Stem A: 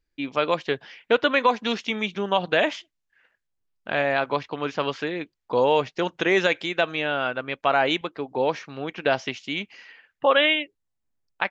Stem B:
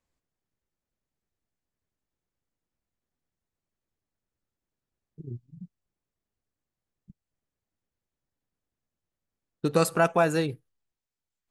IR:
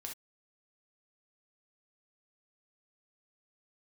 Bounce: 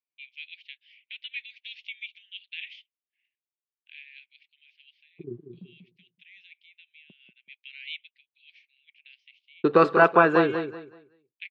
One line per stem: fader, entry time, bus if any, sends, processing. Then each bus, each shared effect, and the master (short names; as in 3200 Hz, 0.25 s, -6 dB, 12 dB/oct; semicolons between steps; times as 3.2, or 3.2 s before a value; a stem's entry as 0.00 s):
-8.5 dB, 0.00 s, no send, no echo send, steep high-pass 2200 Hz 72 dB/oct; auto duck -15 dB, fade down 1.75 s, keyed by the second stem
+2.5 dB, 0.00 s, no send, echo send -8 dB, gate -47 dBFS, range -28 dB; low shelf 180 Hz +4.5 dB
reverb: off
echo: feedback echo 0.189 s, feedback 26%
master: speaker cabinet 270–3400 Hz, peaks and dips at 380 Hz +9 dB, 1100 Hz +9 dB, 1600 Hz +5 dB